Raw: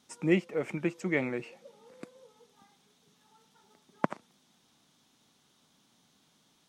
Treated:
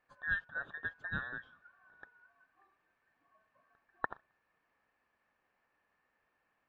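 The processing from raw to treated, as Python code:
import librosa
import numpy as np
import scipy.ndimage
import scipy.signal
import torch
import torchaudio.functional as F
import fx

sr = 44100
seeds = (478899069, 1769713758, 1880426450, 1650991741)

y = fx.band_invert(x, sr, width_hz=2000)
y = scipy.signal.sosfilt(scipy.signal.butter(2, 1400.0, 'lowpass', fs=sr, output='sos'), y)
y = y * 10.0 ** (-5.0 / 20.0)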